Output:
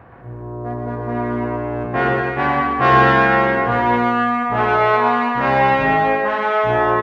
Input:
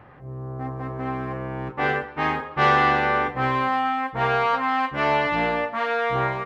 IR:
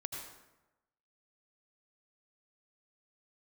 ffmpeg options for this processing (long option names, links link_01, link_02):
-filter_complex "[0:a]asetrate=40517,aresample=44100,aecho=1:1:120|204|262.8|304|332.8:0.631|0.398|0.251|0.158|0.1,asplit=2[link_01][link_02];[1:a]atrim=start_sample=2205,lowpass=3200[link_03];[link_02][link_03]afir=irnorm=-1:irlink=0,volume=-4.5dB[link_04];[link_01][link_04]amix=inputs=2:normalize=0,volume=1.5dB"